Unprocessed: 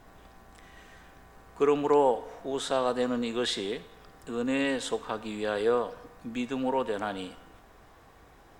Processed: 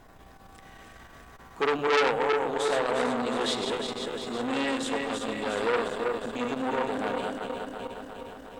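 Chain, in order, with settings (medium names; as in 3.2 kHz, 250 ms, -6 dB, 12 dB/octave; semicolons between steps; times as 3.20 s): backward echo that repeats 179 ms, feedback 79%, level -5 dB; transformer saturation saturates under 2.5 kHz; trim +2 dB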